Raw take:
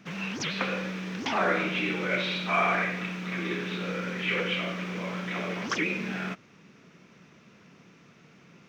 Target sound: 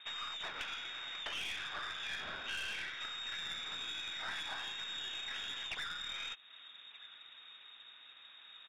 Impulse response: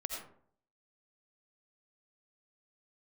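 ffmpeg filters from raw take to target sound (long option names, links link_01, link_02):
-filter_complex "[0:a]asettb=1/sr,asplit=3[link_01][link_02][link_03];[link_01]atrim=end=0.484[link_04];[link_02]atrim=start=0.48:end=3,asetpts=PTS-STARTPTS,afade=type=in:duration=0.004:curve=qsin,afade=type=out:start_time=2.516:duration=0.004:curve=qsin,lowshelf=frequency=200:gain=-11.5[link_05];[link_03]atrim=start=2.996[link_06];[link_04][link_05]acrossfade=duration=0.004:curve1=hsin:curve2=qsin[link_07];[link_07][link_06]acrossfade=duration=0.004:curve1=qsin:curve2=hsin,asplit=2[link_08][link_09];[link_09]adelay=1224,volume=-26dB,highshelf=frequency=4000:gain=-27.6[link_10];[link_08][link_10]amix=inputs=2:normalize=0,lowpass=frequency=3300:width_type=q:width=0.5098,lowpass=frequency=3300:width_type=q:width=0.6013,lowpass=frequency=3300:width_type=q:width=0.9,lowpass=frequency=3300:width_type=q:width=2.563,afreqshift=-3900,aeval=exprs='(tanh(15.8*val(0)+0.5)-tanh(0.5))/15.8':channel_layout=same,acompressor=threshold=-43dB:ratio=3,volume=1dB"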